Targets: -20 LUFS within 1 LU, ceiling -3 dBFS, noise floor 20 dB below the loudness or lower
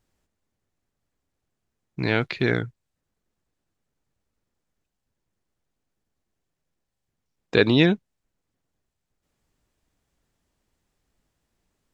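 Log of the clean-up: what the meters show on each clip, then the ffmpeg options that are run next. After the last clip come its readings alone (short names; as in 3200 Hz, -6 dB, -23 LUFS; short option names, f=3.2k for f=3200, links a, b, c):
loudness -22.5 LUFS; peak -2.5 dBFS; loudness target -20.0 LUFS
-> -af "volume=2.5dB,alimiter=limit=-3dB:level=0:latency=1"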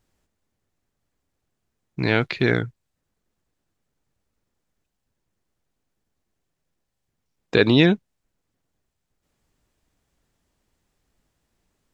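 loudness -20.5 LUFS; peak -3.0 dBFS; noise floor -79 dBFS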